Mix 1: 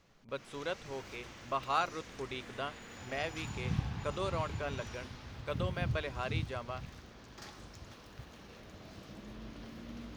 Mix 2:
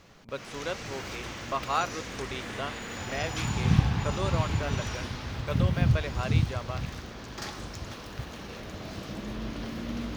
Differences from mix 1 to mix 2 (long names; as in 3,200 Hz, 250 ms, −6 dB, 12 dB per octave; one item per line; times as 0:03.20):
speech +3.5 dB
background +12.0 dB